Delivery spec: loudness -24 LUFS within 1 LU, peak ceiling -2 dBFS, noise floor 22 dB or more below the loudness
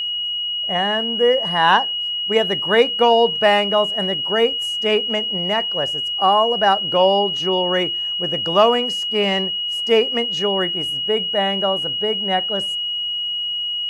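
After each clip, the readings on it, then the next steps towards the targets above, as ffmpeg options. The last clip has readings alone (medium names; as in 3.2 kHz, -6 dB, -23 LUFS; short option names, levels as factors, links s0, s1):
steady tone 2.9 kHz; tone level -21 dBFS; loudness -18.0 LUFS; peak level -2.0 dBFS; loudness target -24.0 LUFS
-> -af "bandreject=f=2900:w=30"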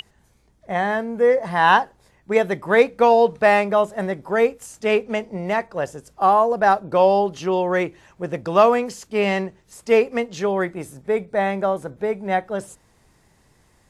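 steady tone not found; loudness -20.0 LUFS; peak level -2.0 dBFS; loudness target -24.0 LUFS
-> -af "volume=0.631"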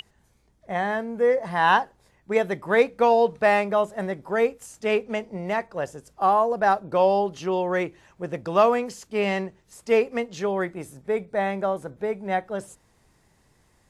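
loudness -24.0 LUFS; peak level -6.0 dBFS; noise floor -63 dBFS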